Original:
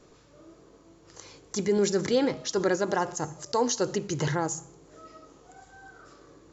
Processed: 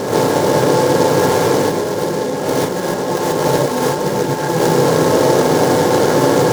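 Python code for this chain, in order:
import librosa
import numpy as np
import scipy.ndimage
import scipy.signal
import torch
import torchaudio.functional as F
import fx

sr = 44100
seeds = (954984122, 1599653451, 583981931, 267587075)

p1 = fx.bin_compress(x, sr, power=0.2)
p2 = fx.high_shelf(p1, sr, hz=3600.0, db=-9.5)
p3 = fx.over_compress(p2, sr, threshold_db=-22.0, ratio=-0.5)
p4 = p3 + fx.echo_split(p3, sr, split_hz=680.0, low_ms=506, high_ms=233, feedback_pct=52, wet_db=-9.5, dry=0)
p5 = fx.rev_gated(p4, sr, seeds[0], gate_ms=160, shape='rising', drr_db=-7.5)
p6 = fx.noise_mod_delay(p5, sr, seeds[1], noise_hz=5000.0, depth_ms=0.036)
y = p6 * 10.0 ** (-1.0 / 20.0)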